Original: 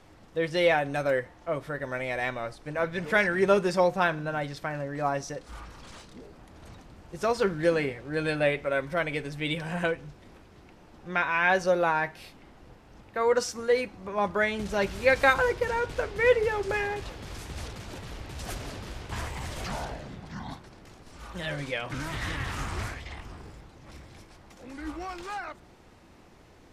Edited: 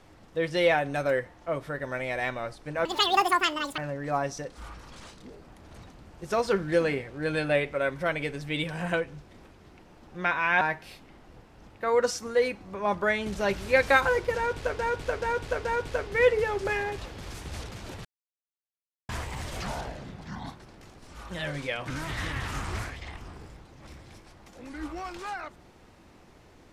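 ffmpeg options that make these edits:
-filter_complex "[0:a]asplit=9[a][b][c][d][e][f][g][h][i];[a]atrim=end=2.854[j];[b]atrim=start=2.85:end=4.69,asetpts=PTS-STARTPTS,asetrate=87318,aresample=44100[k];[c]atrim=start=4.686:end=11.522[l];[d]atrim=start=11.938:end=16.122[m];[e]atrim=start=15.688:end=16.122[n];[f]atrim=start=15.688:end=16.122[o];[g]atrim=start=15.688:end=18.09,asetpts=PTS-STARTPTS,afade=t=out:st=2.398:d=0.004:c=hsin[p];[h]atrim=start=18.09:end=19.13,asetpts=PTS-STARTPTS,volume=0[q];[i]atrim=start=19.13,asetpts=PTS-STARTPTS,afade=t=in:d=0.004:c=hsin[r];[j][k]acrossfade=d=0.004:c1=hsin:c2=hsin[s];[s][l]acrossfade=d=0.004:c1=hsin:c2=hsin[t];[t][m]acrossfade=d=0.004:c1=hsin:c2=hsin[u];[u][n]acrossfade=d=0.004:c1=hsin:c2=hsin[v];[v][o]acrossfade=d=0.004:c1=hsin:c2=hsin[w];[p][q][r]concat=n=3:v=0:a=1[x];[w][x]acrossfade=d=0.004:c1=hsin:c2=hsin"

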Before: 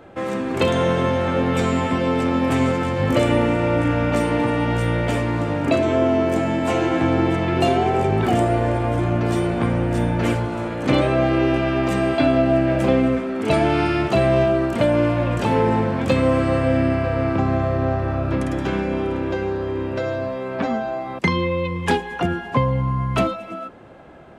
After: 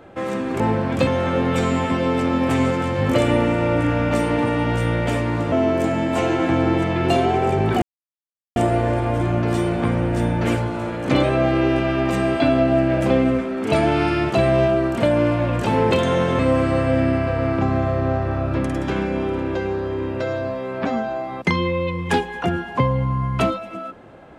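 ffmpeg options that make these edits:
-filter_complex "[0:a]asplit=7[a][b][c][d][e][f][g];[a]atrim=end=0.602[h];[b]atrim=start=15.688:end=16.162[i];[c]atrim=start=1.078:end=5.532[j];[d]atrim=start=6.038:end=8.34,asetpts=PTS-STARTPTS,afade=t=out:st=2.298:d=0.004:c=hsin,apad=pad_dur=0.74[k];[e]atrim=start=8.34:end=15.692,asetpts=PTS-STARTPTS,afade=t=in:d=0.004:c=hsin[l];[f]atrim=start=0.598:end=1.082[m];[g]atrim=start=16.158[n];[h][i]acrossfade=d=0.004:c1=hsin:c2=hsin[o];[o][j]acrossfade=d=0.004:c1=hsin:c2=hsin[p];[k][l]concat=n=2:v=0:a=1[q];[p][q]acrossfade=d=0.004:c1=hsin:c2=hsin[r];[r][m]acrossfade=d=0.004:c1=hsin:c2=hsin[s];[s][n]acrossfade=d=0.004:c1=hsin:c2=hsin"

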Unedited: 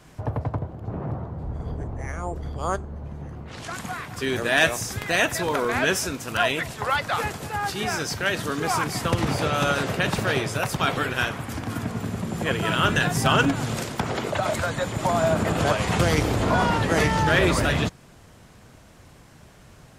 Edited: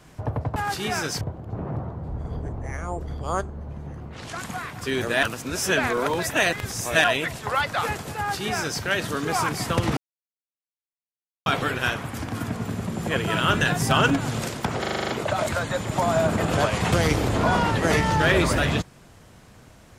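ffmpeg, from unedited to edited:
-filter_complex "[0:a]asplit=14[a][b][c][d][e][f][g][h][i][j][k][l][m][n];[a]atrim=end=0.562[o];[b]atrim=start=7.518:end=8.172[p];[c]atrim=start=0.558:end=4.582[q];[d]atrim=start=4.578:end=6.392,asetpts=PTS-STARTPTS,areverse[r];[e]atrim=start=6.388:end=9.32,asetpts=PTS-STARTPTS,afade=t=out:st=2.928:d=0.004:c=hsin[s];[f]atrim=start=9.32:end=10.81,asetpts=PTS-STARTPTS,volume=0[t];[g]atrim=start=10.81:end=14.192,asetpts=PTS-STARTPTS,afade=t=in:d=0.004:c=hsin[u];[h]atrim=start=14.148:end=14.192[v];[i]atrim=start=14.148:end=14.192[w];[j]atrim=start=14.148:end=14.192[x];[k]atrim=start=14.148:end=14.192[y];[l]atrim=start=14.148:end=14.192[z];[m]atrim=start=14.148:end=14.192[aa];[n]atrim=start=14.148[ab];[o][p]acrossfade=d=0.004:c1=hsin:c2=hsin[ac];[ac][q]acrossfade=d=0.004:c1=hsin:c2=hsin[ad];[ad][r]acrossfade=d=0.004:c1=hsin:c2=hsin[ae];[s][t][u]concat=n=3:v=0:a=1[af];[ae][af]acrossfade=d=0.004:c1=hsin:c2=hsin[ag];[ag][v]acrossfade=d=0.004:c1=hsin:c2=hsin[ah];[ah][w]acrossfade=d=0.004:c1=hsin:c2=hsin[ai];[ai][x]acrossfade=d=0.004:c1=hsin:c2=hsin[aj];[aj][y]acrossfade=d=0.004:c1=hsin:c2=hsin[ak];[ak][z]acrossfade=d=0.004:c1=hsin:c2=hsin[al];[al][aa]acrossfade=d=0.004:c1=hsin:c2=hsin[am];[am][ab]acrossfade=d=0.004:c1=hsin:c2=hsin"

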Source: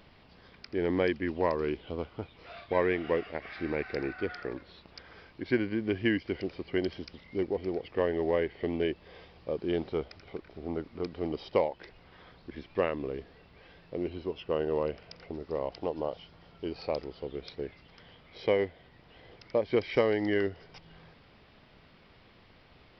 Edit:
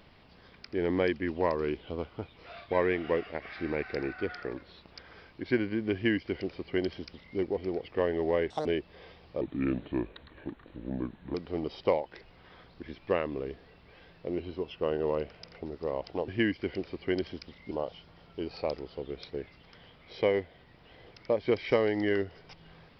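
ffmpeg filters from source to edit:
-filter_complex "[0:a]asplit=7[a][b][c][d][e][f][g];[a]atrim=end=8.504[h];[b]atrim=start=8.5:end=8.78,asetpts=PTS-STARTPTS,asetrate=79380,aresample=44100[i];[c]atrim=start=8.776:end=9.534[j];[d]atrim=start=9.53:end=11.02,asetpts=PTS-STARTPTS,asetrate=33957,aresample=44100,atrim=end_sample=85336,asetpts=PTS-STARTPTS[k];[e]atrim=start=11.016:end=15.962[l];[f]atrim=start=5.938:end=7.372[m];[g]atrim=start=15.958[n];[h][i]acrossfade=d=0.004:c1=hsin:c2=hsin[o];[o][j]acrossfade=d=0.004:c1=hsin:c2=hsin[p];[p][k]acrossfade=d=0.004:c1=hsin:c2=hsin[q];[q][l]acrossfade=d=0.004:c1=hsin:c2=hsin[r];[r][m]acrossfade=d=0.004:c1=hsin:c2=hsin[s];[s][n]acrossfade=d=0.004:c1=hsin:c2=hsin"

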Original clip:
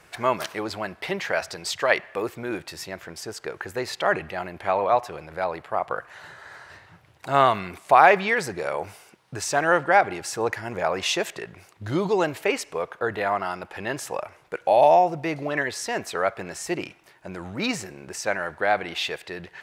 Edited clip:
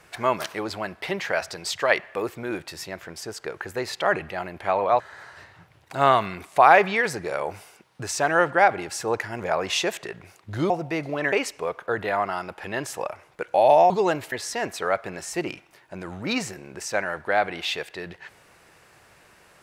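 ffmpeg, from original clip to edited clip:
-filter_complex "[0:a]asplit=6[a][b][c][d][e][f];[a]atrim=end=5.002[g];[b]atrim=start=6.328:end=12.032[h];[c]atrim=start=15.028:end=15.652[i];[d]atrim=start=12.448:end=15.032[j];[e]atrim=start=12.028:end=12.452[k];[f]atrim=start=15.648[l];[g][h]acrossfade=d=0.004:c1=hsin:c2=hsin[m];[m][i]acrossfade=d=0.004:c1=hsin:c2=hsin[n];[n][j]acrossfade=d=0.004:c1=hsin:c2=hsin[o];[o][k]acrossfade=d=0.004:c1=hsin:c2=hsin[p];[p][l]acrossfade=d=0.004:c1=hsin:c2=hsin"

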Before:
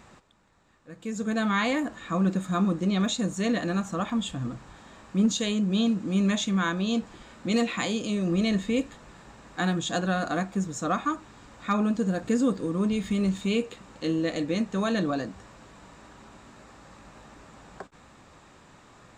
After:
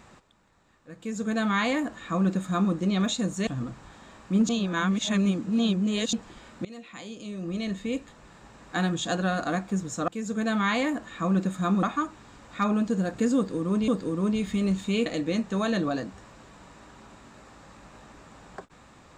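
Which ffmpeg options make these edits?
-filter_complex "[0:a]asplit=9[a][b][c][d][e][f][g][h][i];[a]atrim=end=3.472[j];[b]atrim=start=4.308:end=5.332[k];[c]atrim=start=5.328:end=6.972,asetpts=PTS-STARTPTS,areverse[l];[d]atrim=start=6.968:end=7.49,asetpts=PTS-STARTPTS,afade=t=out:st=0.518:d=0.004:c=hsin:silence=0.0707946[m];[e]atrim=start=7.49:end=10.922,asetpts=PTS-STARTPTS,afade=t=in:d=2.14:silence=0.0707946[n];[f]atrim=start=0.978:end=2.732[o];[g]atrim=start=10.918:end=12.972[p];[h]atrim=start=12.448:end=13.632[q];[i]atrim=start=14.278[r];[j][k]acrossfade=d=0.004:c1=hsin:c2=hsin[s];[s][l]acrossfade=d=0.004:c1=hsin:c2=hsin[t];[m][n]concat=n=2:v=0:a=1[u];[t][u]acrossfade=d=0.004:c1=hsin:c2=hsin[v];[v][o]acrossfade=d=0.004:c1=hsin:c2=hsin[w];[w][p]acrossfade=d=0.004:c1=hsin:c2=hsin[x];[x][q]acrossfade=d=0.004:c1=hsin:c2=hsin[y];[y][r]acrossfade=d=0.004:c1=hsin:c2=hsin"

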